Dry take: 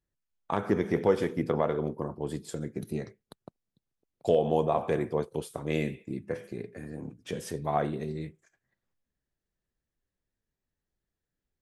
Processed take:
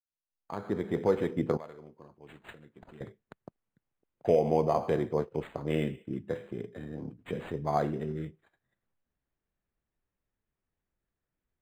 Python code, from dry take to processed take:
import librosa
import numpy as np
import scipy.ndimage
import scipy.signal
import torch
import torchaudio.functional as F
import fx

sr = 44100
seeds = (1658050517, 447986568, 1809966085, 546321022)

y = fx.fade_in_head(x, sr, length_s=1.37)
y = fx.pre_emphasis(y, sr, coefficient=0.9, at=(1.57, 3.01))
y = np.interp(np.arange(len(y)), np.arange(len(y))[::8], y[::8])